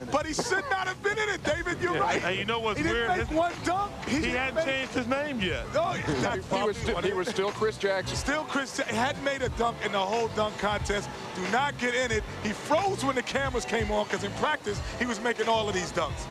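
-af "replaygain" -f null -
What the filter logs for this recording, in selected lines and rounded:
track_gain = +9.7 dB
track_peak = 0.159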